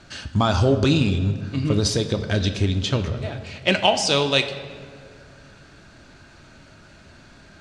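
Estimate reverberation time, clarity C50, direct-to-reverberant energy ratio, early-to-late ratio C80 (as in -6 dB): 2.2 s, 10.5 dB, 7.0 dB, 11.5 dB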